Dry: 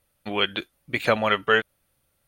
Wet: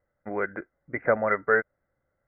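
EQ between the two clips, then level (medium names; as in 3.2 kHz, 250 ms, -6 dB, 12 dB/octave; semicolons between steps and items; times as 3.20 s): rippled Chebyshev low-pass 2.1 kHz, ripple 6 dB; 0.0 dB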